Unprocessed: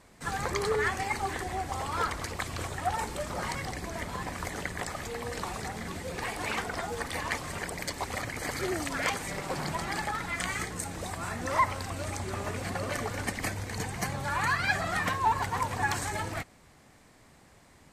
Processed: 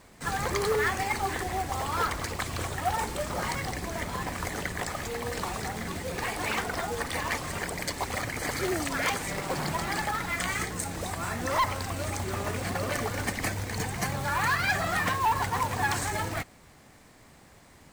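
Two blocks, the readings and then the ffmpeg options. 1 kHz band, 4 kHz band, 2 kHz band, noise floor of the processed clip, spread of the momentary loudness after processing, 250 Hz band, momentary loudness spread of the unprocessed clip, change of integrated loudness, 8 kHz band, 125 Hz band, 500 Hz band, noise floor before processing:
+2.0 dB, +3.0 dB, +2.0 dB, −55 dBFS, 7 LU, +2.5 dB, 8 LU, +2.5 dB, +3.0 dB, +2.5 dB, +2.5 dB, −58 dBFS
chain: -af "acrusher=bits=3:mode=log:mix=0:aa=0.000001,aeval=exprs='0.266*sin(PI/2*2.24*val(0)/0.266)':channel_layout=same,volume=-8dB"

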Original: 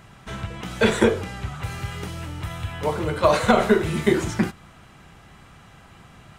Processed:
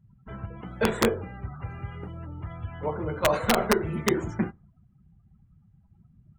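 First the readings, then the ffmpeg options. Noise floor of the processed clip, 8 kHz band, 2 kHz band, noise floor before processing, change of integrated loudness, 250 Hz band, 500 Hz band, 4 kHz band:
−62 dBFS, −2.0 dB, −5.5 dB, −49 dBFS, −5.5 dB, −6.0 dB, −6.0 dB, −4.0 dB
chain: -af "equalizer=frequency=4600:width_type=o:width=2.3:gain=-7.5,afftdn=noise_reduction=31:noise_floor=-39,aeval=exprs='(mod(2.24*val(0)+1,2)-1)/2.24':channel_layout=same,volume=-5dB"

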